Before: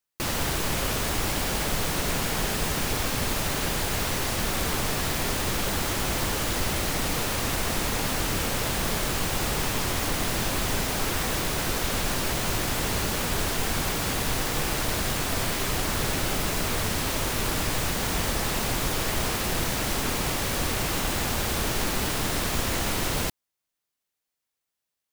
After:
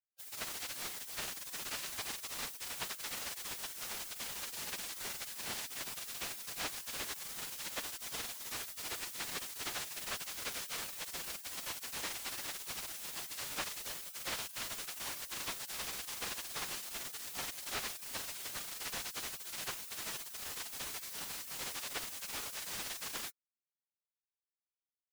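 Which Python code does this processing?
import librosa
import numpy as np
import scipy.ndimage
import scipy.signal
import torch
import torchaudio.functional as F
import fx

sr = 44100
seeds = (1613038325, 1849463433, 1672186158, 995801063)

y = fx.spec_gate(x, sr, threshold_db=-25, keep='weak')
y = fx.tremolo_shape(y, sr, shape='triangle', hz=2.6, depth_pct=75)
y = fx.slew_limit(y, sr, full_power_hz=50.0)
y = y * librosa.db_to_amplitude(3.5)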